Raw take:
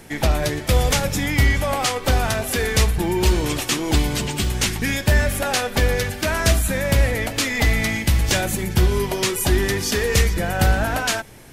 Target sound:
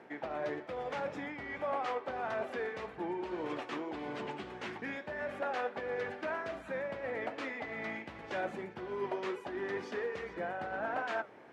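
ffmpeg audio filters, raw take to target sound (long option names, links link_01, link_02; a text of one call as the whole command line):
ffmpeg -i in.wav -af "areverse,acompressor=threshold=-24dB:ratio=6,areverse,lowpass=1500,flanger=delay=7.3:depth=6.7:regen=-77:speed=1.7:shape=triangular,highpass=370" out.wav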